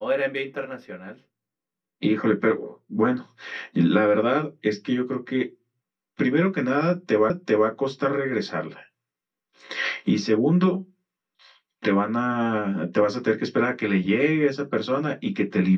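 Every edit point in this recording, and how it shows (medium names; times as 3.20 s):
7.30 s: repeat of the last 0.39 s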